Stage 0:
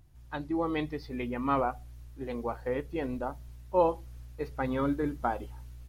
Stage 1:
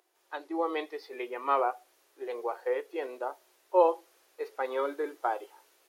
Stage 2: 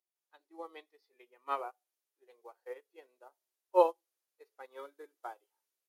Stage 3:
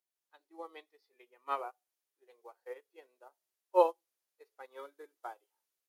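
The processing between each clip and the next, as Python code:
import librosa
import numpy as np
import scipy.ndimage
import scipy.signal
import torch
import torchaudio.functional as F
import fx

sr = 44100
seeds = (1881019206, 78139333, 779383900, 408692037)

y1 = fx.hpss(x, sr, part='harmonic', gain_db=4)
y1 = scipy.signal.sosfilt(scipy.signal.ellip(4, 1.0, 50, 370.0, 'highpass', fs=sr, output='sos'), y1)
y2 = fx.high_shelf(y1, sr, hz=3800.0, db=12.0)
y2 = fx.upward_expand(y2, sr, threshold_db=-38.0, expansion=2.5)
y2 = y2 * 10.0 ** (-1.0 / 20.0)
y3 = fx.low_shelf(y2, sr, hz=240.0, db=-3.5)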